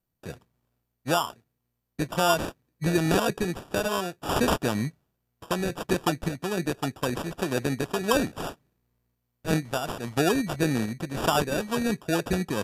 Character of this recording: random-step tremolo; aliases and images of a low sample rate 2100 Hz, jitter 0%; MP2

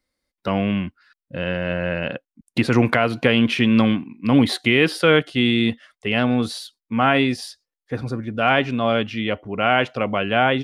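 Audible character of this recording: noise floor -89 dBFS; spectral tilt -4.0 dB/oct

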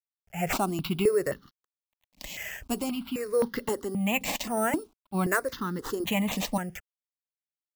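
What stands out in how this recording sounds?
aliases and images of a low sample rate 9800 Hz, jitter 0%; random-step tremolo; a quantiser's noise floor 12-bit, dither none; notches that jump at a steady rate 3.8 Hz 380–2400 Hz

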